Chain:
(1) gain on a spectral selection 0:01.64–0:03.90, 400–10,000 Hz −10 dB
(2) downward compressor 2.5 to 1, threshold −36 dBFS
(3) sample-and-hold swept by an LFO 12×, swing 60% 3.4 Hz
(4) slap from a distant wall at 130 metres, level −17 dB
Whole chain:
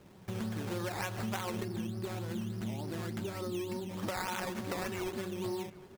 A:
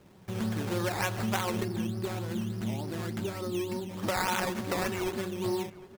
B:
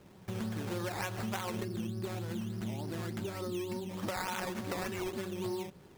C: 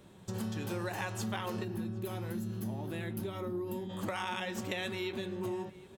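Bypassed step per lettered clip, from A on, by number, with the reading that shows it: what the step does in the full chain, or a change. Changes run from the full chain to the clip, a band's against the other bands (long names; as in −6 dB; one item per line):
2, average gain reduction 4.0 dB
4, echo-to-direct ratio −19.5 dB to none audible
3, 8 kHz band −2.0 dB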